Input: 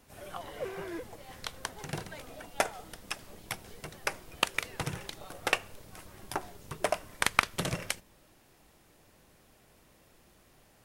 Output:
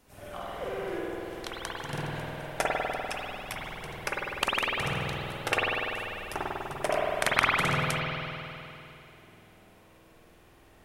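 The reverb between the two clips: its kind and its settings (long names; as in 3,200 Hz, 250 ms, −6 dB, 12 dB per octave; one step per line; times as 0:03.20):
spring reverb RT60 2.9 s, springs 49 ms, chirp 75 ms, DRR −6.5 dB
level −2 dB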